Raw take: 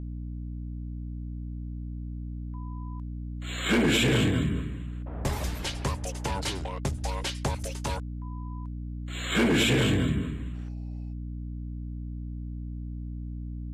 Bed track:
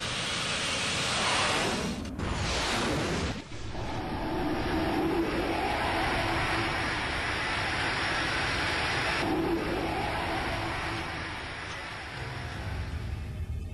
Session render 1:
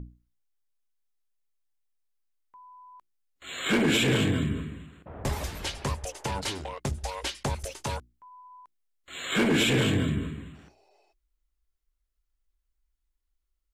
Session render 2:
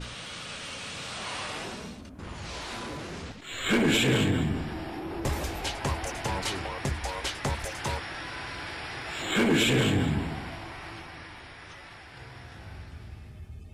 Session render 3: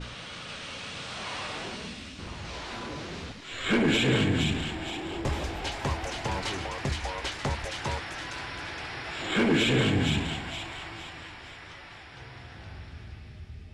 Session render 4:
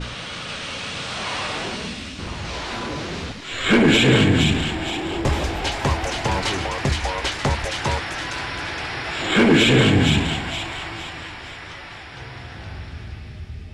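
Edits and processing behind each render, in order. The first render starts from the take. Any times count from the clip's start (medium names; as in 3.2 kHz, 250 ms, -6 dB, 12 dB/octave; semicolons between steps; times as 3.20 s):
hum notches 60/120/180/240/300/360 Hz
add bed track -8.5 dB
distance through air 67 m; feedback echo behind a high-pass 467 ms, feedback 46%, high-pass 2.4 kHz, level -3 dB
trim +9 dB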